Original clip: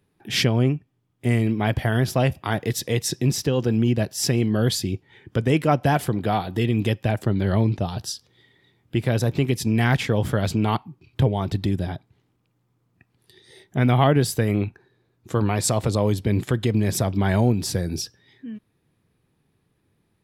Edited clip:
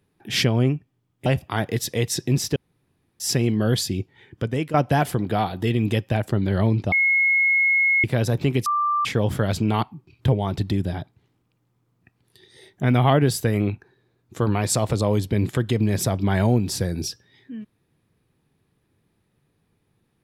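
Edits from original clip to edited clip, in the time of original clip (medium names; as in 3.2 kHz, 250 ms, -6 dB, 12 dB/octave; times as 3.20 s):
1.26–2.20 s: delete
3.50–4.14 s: room tone
4.94–5.68 s: fade out equal-power, to -10 dB
7.86–8.98 s: bleep 2.17 kHz -15.5 dBFS
9.60–9.99 s: bleep 1.18 kHz -18.5 dBFS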